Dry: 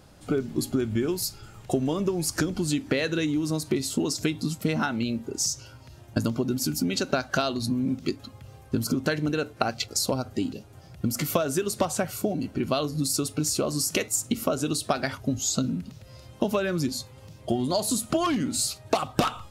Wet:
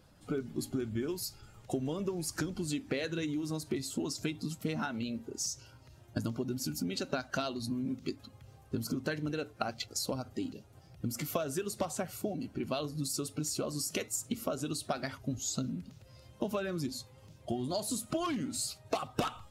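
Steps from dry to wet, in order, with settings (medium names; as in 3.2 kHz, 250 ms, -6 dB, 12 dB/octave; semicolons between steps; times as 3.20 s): coarse spectral quantiser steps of 15 dB; trim -8.5 dB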